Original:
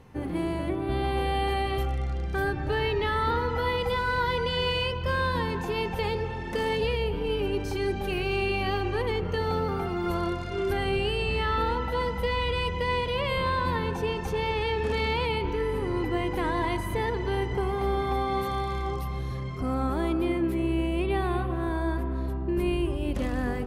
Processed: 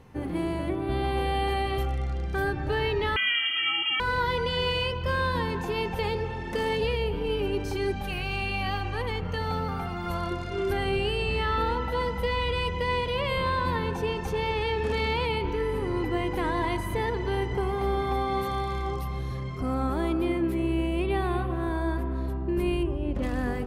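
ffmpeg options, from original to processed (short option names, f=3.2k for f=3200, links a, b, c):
-filter_complex "[0:a]asettb=1/sr,asplit=3[a][b][c];[a]atrim=end=3.164[d];[b]atrim=start=3.16:end=4,asetpts=PTS-STARTPTS,afade=t=in:d=0.004:c=qsin,afade=t=out:st=0.836:d=0.004:c=qsin,lowpass=f=2.8k:t=q:w=0.5098,lowpass=f=2.8k:t=q:w=0.6013,lowpass=f=2.8k:t=q:w=0.9,lowpass=f=2.8k:t=q:w=2.563,afreqshift=-3300[e];[c]atrim=start=3.996[f];[d][e]acrossfade=d=0.004:c1=hsin:c2=qsin[g];[g][f]acrossfade=d=0.004:c1=qsin:c2=hsin,asettb=1/sr,asplit=3[h][i][j];[h]atrim=end=7.924[k];[i]atrim=start=7.92:end=10.31,asetpts=PTS-STARTPTS,afade=t=in:d=0.004:c=qsin,afade=t=out:st=2.386:d=0.004:c=qsin,equalizer=f=380:w=3.4:g=-12.5[l];[j]atrim=start=10.306[m];[k][l]acrossfade=d=0.004:c1=hsin:c2=qsin[n];[n][m]acrossfade=d=0.004:c1=qsin:c2=hsin,asettb=1/sr,asplit=3[o][p][q];[o]atrim=end=22.834[r];[p]atrim=start=22.83:end=23.23,asetpts=PTS-STARTPTS,afade=t=in:d=0.004:c=qsin,afade=t=out:st=0.396:d=0.004:c=qsin,lowpass=f=1.3k:p=1[s];[q]atrim=start=23.226[t];[r][s]acrossfade=d=0.004:c1=hsin:c2=qsin[u];[u][t]acrossfade=d=0.004:c1=qsin:c2=hsin"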